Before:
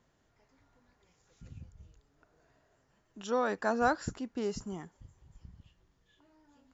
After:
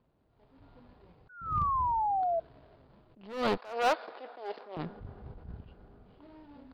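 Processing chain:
running median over 25 samples
in parallel at +1 dB: downward compressor, threshold −48 dBFS, peak gain reduction 21.5 dB
on the sum: harmonic generator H 8 −16 dB, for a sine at −16 dBFS
on a send at −22 dB: convolution reverb RT60 5.1 s, pre-delay 57 ms
0:01.29–0:02.40: on the sum: sound drawn into the spectrogram fall 650–1,500 Hz −36 dBFS
0:03.57–0:04.77: high-pass filter 470 Hz 24 dB per octave
automatic gain control gain up to 13 dB
Butterworth low-pass 4,900 Hz 96 dB per octave
hard clipping −14 dBFS, distortion −12 dB
level that may rise only so fast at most 110 dB per second
level −6 dB

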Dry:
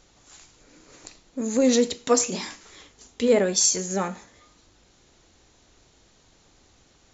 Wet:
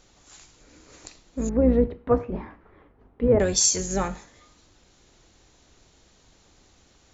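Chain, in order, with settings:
sub-octave generator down 2 octaves, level −3 dB
0:01.49–0:03.40: Bessel low-pass filter 1,100 Hz, order 4

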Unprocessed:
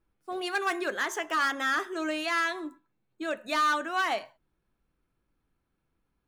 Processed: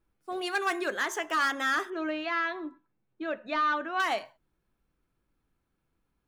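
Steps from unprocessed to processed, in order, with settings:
0:01.90–0:04.00: high-frequency loss of the air 260 metres

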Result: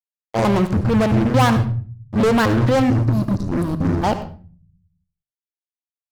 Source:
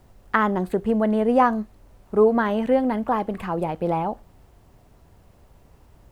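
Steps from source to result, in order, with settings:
pitch shifter gated in a rhythm −11.5 semitones, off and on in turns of 223 ms
transient designer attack −11 dB, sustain +3 dB
in parallel at +1 dB: downward compressor, threshold −28 dBFS, peak gain reduction 13.5 dB
on the sum: time-frequency box erased 0:02.83–0:04.04, 360–3,700 Hz
fuzz pedal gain 23 dB, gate −32 dBFS
on a send at −11 dB: convolution reverb RT60 0.40 s, pre-delay 71 ms

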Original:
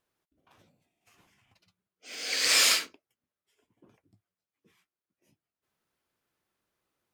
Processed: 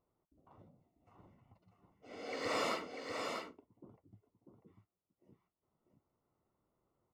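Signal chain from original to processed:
Savitzky-Golay smoothing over 65 samples
low-shelf EQ 200 Hz +5 dB
single-tap delay 644 ms −5 dB
level +1.5 dB

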